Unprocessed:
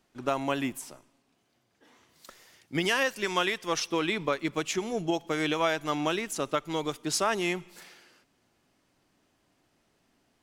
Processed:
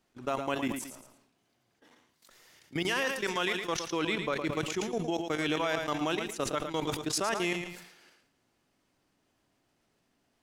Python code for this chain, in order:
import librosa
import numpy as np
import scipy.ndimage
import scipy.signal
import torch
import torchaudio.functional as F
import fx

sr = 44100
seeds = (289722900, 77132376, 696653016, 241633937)

p1 = fx.level_steps(x, sr, step_db=15)
p2 = p1 + fx.echo_feedback(p1, sr, ms=112, feedback_pct=25, wet_db=-10, dry=0)
y = fx.sustainer(p2, sr, db_per_s=67.0)